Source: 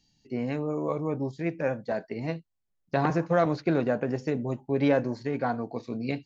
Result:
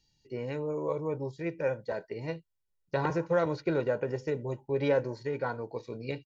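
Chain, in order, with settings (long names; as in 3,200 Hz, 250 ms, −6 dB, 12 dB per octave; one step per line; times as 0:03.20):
comb filter 2.1 ms, depth 61%
level −4.5 dB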